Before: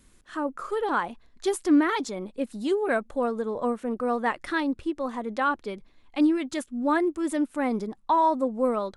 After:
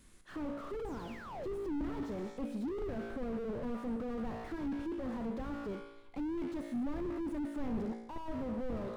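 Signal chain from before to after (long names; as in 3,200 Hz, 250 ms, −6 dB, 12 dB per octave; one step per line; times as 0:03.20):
sound drawn into the spectrogram fall, 0:00.85–0:01.54, 320–9,000 Hz −33 dBFS
tuned comb filter 57 Hz, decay 0.88 s, harmonics all, mix 70%
slew-rate limiting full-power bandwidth 2.9 Hz
level +5.5 dB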